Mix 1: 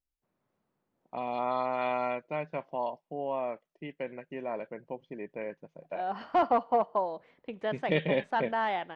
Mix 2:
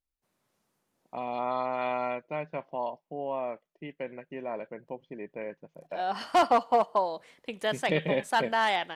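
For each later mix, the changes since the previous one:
second voice: remove tape spacing loss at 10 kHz 36 dB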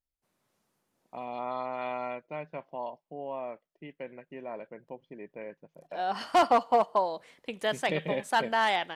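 first voice -4.0 dB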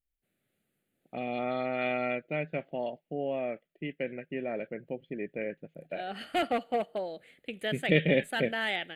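first voice +9.5 dB; master: add static phaser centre 2.4 kHz, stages 4

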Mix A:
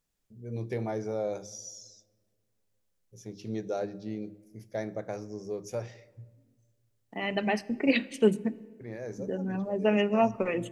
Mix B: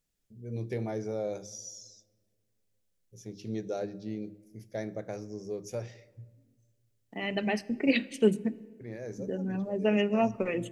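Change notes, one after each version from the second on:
master: add peaking EQ 1 kHz -5.5 dB 1.3 oct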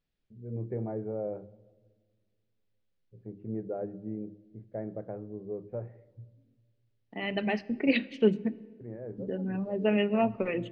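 first voice: add Gaussian low-pass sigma 6.5 samples; master: add low-pass 4.2 kHz 24 dB/octave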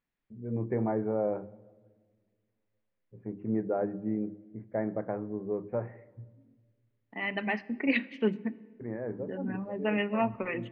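second voice -9.5 dB; master: add graphic EQ 250/1000/2000 Hz +7/+12/+11 dB

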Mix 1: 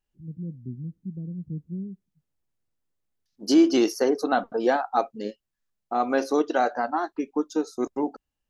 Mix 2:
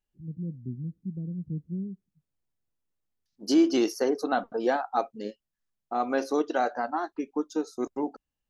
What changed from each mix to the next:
second voice -3.5 dB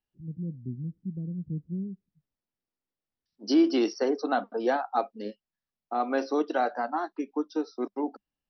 second voice: add Chebyshev high-pass 200 Hz, order 6; master: add brick-wall FIR low-pass 5.9 kHz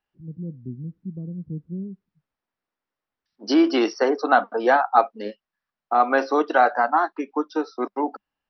master: add peaking EQ 1.3 kHz +13 dB 2.8 oct

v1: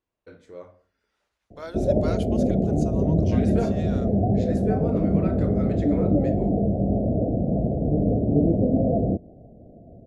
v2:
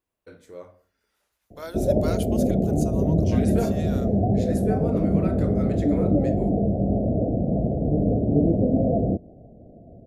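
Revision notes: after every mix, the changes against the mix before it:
master: remove distance through air 82 m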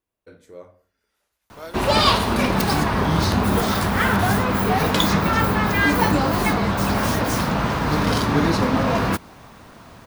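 background: remove steep low-pass 700 Hz 96 dB/octave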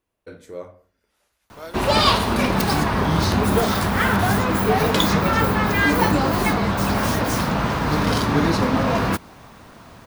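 first voice +6.5 dB

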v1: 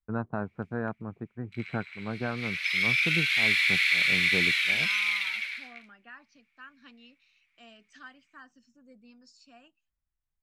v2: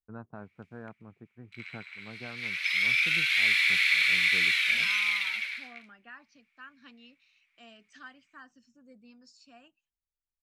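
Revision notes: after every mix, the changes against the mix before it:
first voice -12.0 dB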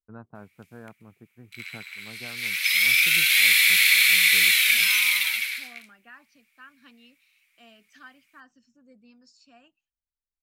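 background: remove tape spacing loss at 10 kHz 23 dB

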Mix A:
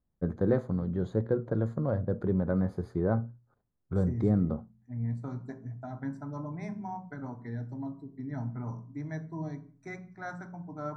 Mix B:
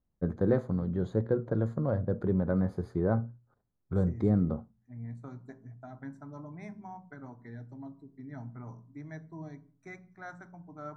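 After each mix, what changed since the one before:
second voice: send -8.5 dB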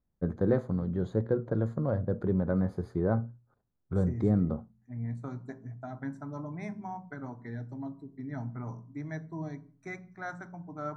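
second voice +5.5 dB

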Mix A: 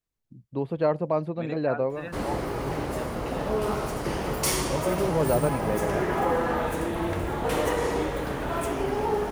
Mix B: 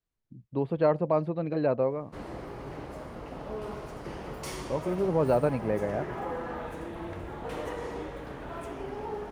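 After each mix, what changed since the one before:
second voice: muted; background -10.0 dB; master: add treble shelf 6.9 kHz -11.5 dB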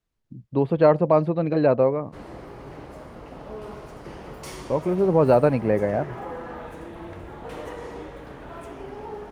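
speech +7.5 dB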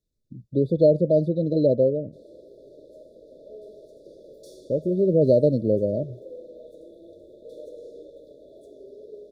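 background: add three-band isolator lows -23 dB, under 400 Hz, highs -13 dB, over 2.8 kHz; master: add brick-wall FIR band-stop 650–3400 Hz

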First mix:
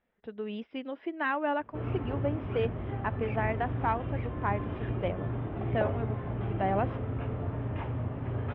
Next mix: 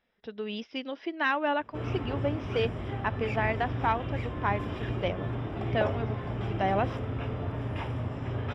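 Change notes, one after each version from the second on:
master: remove distance through air 490 m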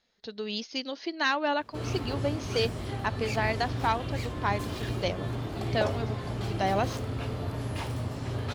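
master: remove Savitzky-Golay filter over 25 samples

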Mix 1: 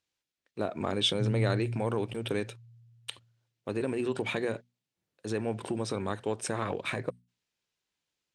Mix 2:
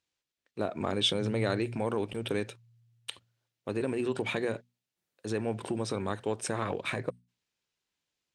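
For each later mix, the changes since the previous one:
background: add tilt EQ +2.5 dB/octave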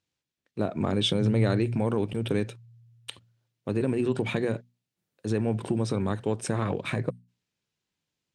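master: add peaking EQ 140 Hz +10 dB 2.3 oct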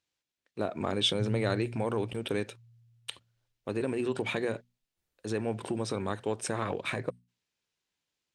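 background: remove high-pass 120 Hz 24 dB/octave; master: add peaking EQ 140 Hz -10 dB 2.3 oct

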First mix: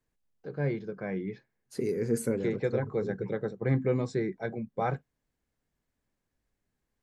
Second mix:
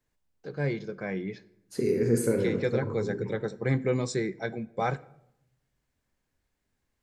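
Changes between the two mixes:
first voice: remove low-pass 1.5 kHz 6 dB/octave; reverb: on, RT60 0.80 s

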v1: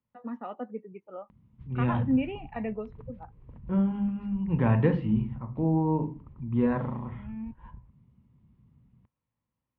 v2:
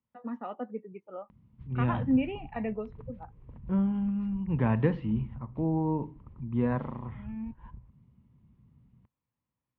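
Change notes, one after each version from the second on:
second voice: send -10.0 dB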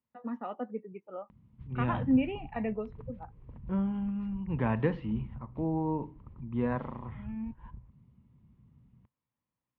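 second voice: add bass shelf 240 Hz -6 dB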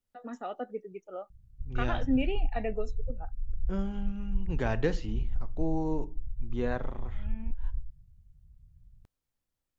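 background: add inverse Chebyshev low-pass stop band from 500 Hz, stop band 60 dB; master: remove cabinet simulation 100–2600 Hz, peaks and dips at 130 Hz +7 dB, 220 Hz +7 dB, 390 Hz -4 dB, 690 Hz -5 dB, 1 kHz +9 dB, 1.5 kHz -5 dB

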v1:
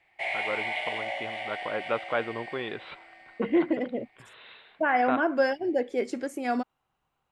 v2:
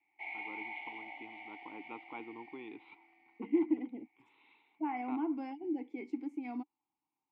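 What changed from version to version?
master: add vowel filter u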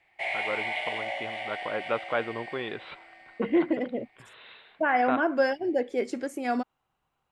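master: remove vowel filter u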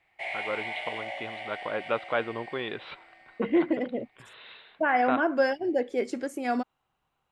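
first voice: remove distance through air 96 m; background -3.5 dB

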